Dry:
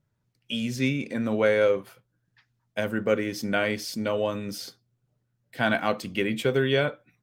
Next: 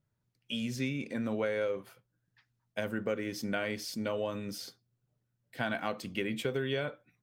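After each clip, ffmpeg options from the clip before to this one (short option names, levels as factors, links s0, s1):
-af "acompressor=threshold=0.0708:ratio=6,volume=0.531"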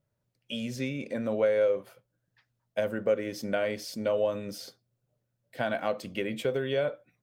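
-af "equalizer=f=570:t=o:w=0.62:g=10"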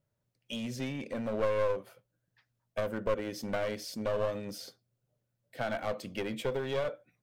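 -af "aeval=exprs='clip(val(0),-1,0.0266)':c=same,volume=0.794"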